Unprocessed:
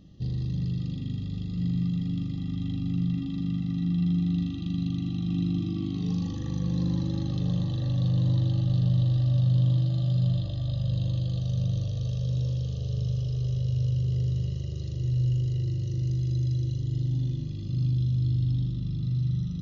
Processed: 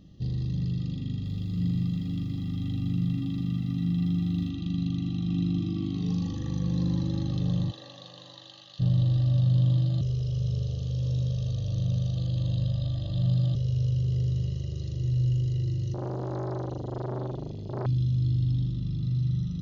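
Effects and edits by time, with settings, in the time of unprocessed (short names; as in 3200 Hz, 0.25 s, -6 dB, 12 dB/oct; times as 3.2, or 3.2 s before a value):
1.08–4.5 lo-fi delay 0.169 s, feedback 55%, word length 10-bit, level -10 dB
7.7–8.79 HPF 520 Hz -> 1400 Hz
10.01–13.55 reverse
15.94–17.86 core saturation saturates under 680 Hz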